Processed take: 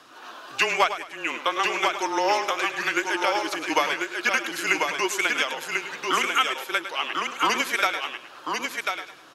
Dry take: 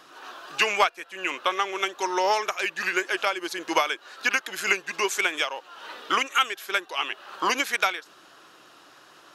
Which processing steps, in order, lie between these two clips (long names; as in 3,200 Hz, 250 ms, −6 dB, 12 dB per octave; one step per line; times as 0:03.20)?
single-tap delay 1,043 ms −4.5 dB
frequency shifter −22 Hz
feedback echo with a swinging delay time 104 ms, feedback 33%, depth 57 cents, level −11 dB